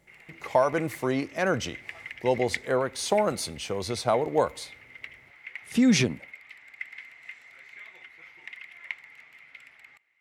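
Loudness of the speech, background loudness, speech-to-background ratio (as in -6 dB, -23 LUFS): -26.5 LUFS, -42.5 LUFS, 16.0 dB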